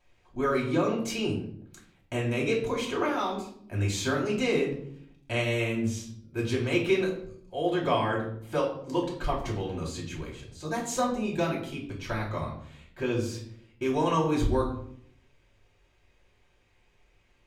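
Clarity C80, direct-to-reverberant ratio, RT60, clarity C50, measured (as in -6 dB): 10.5 dB, -4.0 dB, 0.65 s, 6.5 dB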